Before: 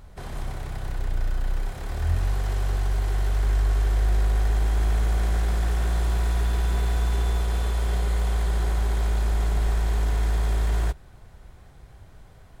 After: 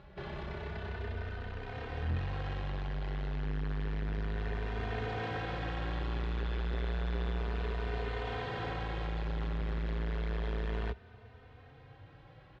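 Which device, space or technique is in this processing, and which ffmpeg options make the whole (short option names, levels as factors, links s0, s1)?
barber-pole flanger into a guitar amplifier: -filter_complex "[0:a]asplit=2[s0][s1];[s1]adelay=3.1,afreqshift=0.31[s2];[s0][s2]amix=inputs=2:normalize=1,asoftclip=type=tanh:threshold=0.0562,highpass=77,equalizer=f=440:t=q:w=4:g=6,equalizer=f=1700:t=q:w=4:g=3,equalizer=f=2700:t=q:w=4:g=4,lowpass=f=4000:w=0.5412,lowpass=f=4000:w=1.3066"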